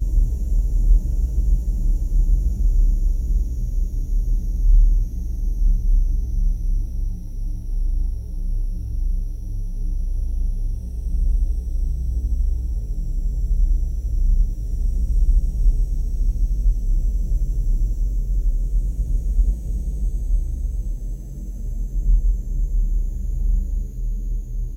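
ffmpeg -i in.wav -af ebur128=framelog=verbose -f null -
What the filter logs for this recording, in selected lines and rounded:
Integrated loudness:
  I:         -25.2 LUFS
  Threshold: -35.2 LUFS
Loudness range:
  LRA:         4.9 LU
  Threshold: -45.3 LUFS
  LRA low:   -28.1 LUFS
  LRA high:  -23.2 LUFS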